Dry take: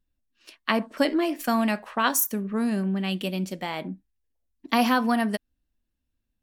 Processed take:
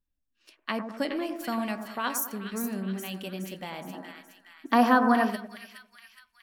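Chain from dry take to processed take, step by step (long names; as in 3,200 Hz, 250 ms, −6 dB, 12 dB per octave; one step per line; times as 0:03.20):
echo with a time of its own for lows and highs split 1,500 Hz, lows 100 ms, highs 418 ms, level −7.5 dB
gain on a spectral selection 0:03.93–0:05.30, 220–2,000 Hz +9 dB
level −7.5 dB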